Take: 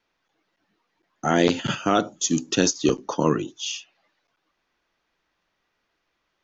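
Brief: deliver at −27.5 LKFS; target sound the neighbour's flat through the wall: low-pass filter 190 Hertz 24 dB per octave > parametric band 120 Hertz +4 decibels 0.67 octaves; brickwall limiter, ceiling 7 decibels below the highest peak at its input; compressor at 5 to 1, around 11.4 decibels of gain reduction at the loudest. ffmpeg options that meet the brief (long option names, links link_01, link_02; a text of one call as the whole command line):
ffmpeg -i in.wav -af "acompressor=threshold=-27dB:ratio=5,alimiter=limit=-20dB:level=0:latency=1,lowpass=frequency=190:width=0.5412,lowpass=frequency=190:width=1.3066,equalizer=frequency=120:width_type=o:width=0.67:gain=4,volume=15.5dB" out.wav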